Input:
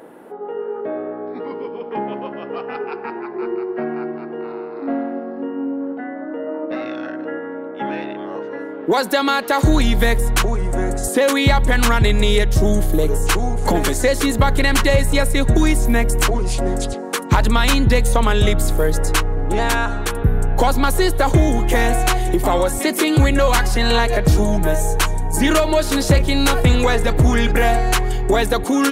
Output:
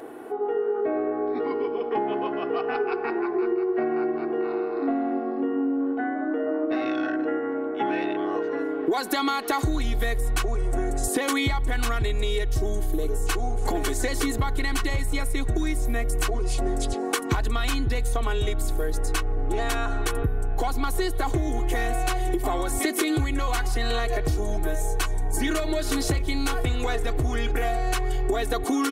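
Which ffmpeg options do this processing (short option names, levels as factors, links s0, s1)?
-af "aecho=1:1:2.7:0.68,acompressor=threshold=0.0891:ratio=10"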